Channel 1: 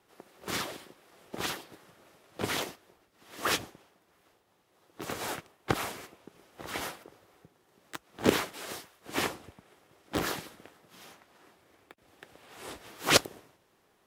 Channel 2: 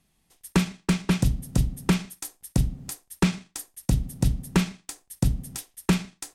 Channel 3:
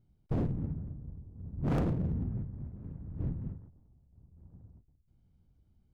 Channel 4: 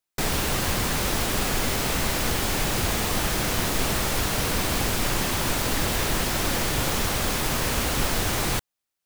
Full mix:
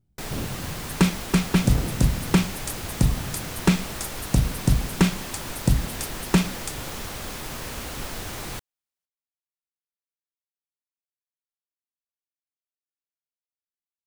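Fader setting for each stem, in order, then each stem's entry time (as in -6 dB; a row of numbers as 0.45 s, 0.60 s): mute, +2.5 dB, -1.0 dB, -9.0 dB; mute, 0.45 s, 0.00 s, 0.00 s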